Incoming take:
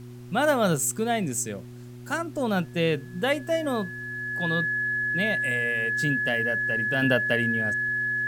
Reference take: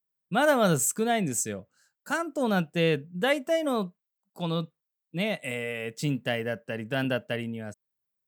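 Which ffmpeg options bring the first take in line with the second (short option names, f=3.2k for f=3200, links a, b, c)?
-af "bandreject=f=121.9:t=h:w=4,bandreject=f=243.8:t=h:w=4,bandreject=f=365.7:t=h:w=4,bandreject=f=1.7k:w=30,agate=range=-21dB:threshold=-33dB,asetnsamples=n=441:p=0,asendcmd='7.02 volume volume -5dB',volume=0dB"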